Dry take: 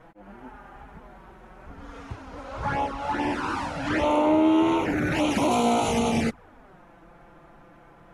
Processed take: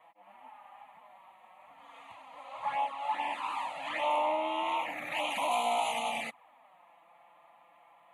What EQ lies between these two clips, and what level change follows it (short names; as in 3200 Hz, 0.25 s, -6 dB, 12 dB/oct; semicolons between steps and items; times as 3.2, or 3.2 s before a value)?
HPF 640 Hz 12 dB/oct; fixed phaser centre 1500 Hz, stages 6; -2.0 dB